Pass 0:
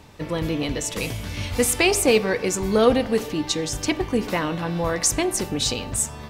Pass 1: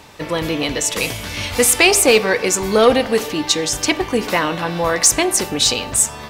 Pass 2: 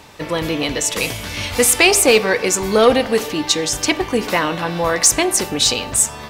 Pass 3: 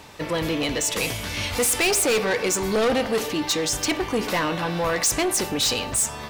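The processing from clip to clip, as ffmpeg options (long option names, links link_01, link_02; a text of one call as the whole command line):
ffmpeg -i in.wav -af "lowshelf=frequency=320:gain=-11,acontrast=84,volume=2dB" out.wav
ffmpeg -i in.wav -af anull out.wav
ffmpeg -i in.wav -af "asoftclip=type=tanh:threshold=-15.5dB,volume=-2dB" out.wav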